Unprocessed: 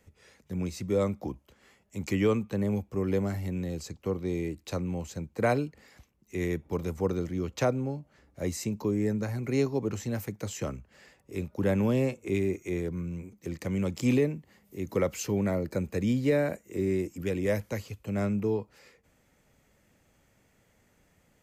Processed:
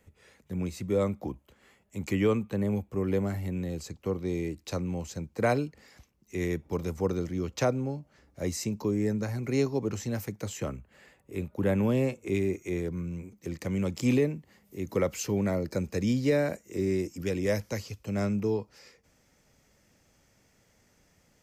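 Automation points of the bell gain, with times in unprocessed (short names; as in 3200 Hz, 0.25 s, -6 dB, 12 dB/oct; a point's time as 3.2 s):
bell 5400 Hz 0.56 oct
3.5 s -4.5 dB
4.44 s +4 dB
10.34 s +4 dB
10.74 s -8 dB
11.68 s -8 dB
12.28 s +2 dB
15.27 s +2 dB
15.71 s +9.5 dB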